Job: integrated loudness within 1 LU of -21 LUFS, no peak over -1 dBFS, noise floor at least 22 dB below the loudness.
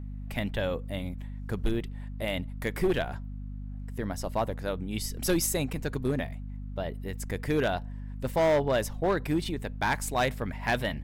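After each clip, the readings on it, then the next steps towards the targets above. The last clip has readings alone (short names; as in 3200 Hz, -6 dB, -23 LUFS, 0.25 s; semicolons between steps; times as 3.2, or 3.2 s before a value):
clipped 1.2%; flat tops at -19.5 dBFS; hum 50 Hz; harmonics up to 250 Hz; hum level -35 dBFS; loudness -30.5 LUFS; peak -19.5 dBFS; loudness target -21.0 LUFS
-> clip repair -19.5 dBFS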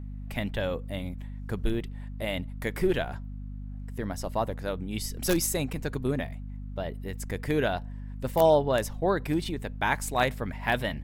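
clipped 0.0%; hum 50 Hz; harmonics up to 250 Hz; hum level -35 dBFS
-> de-hum 50 Hz, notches 5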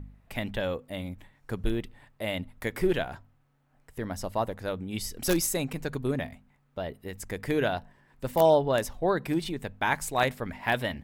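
hum none; loudness -30.0 LUFS; peak -10.5 dBFS; loudness target -21.0 LUFS
-> gain +9 dB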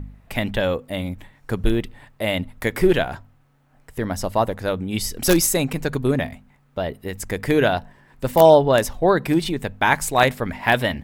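loudness -21.0 LUFS; peak -1.5 dBFS; noise floor -58 dBFS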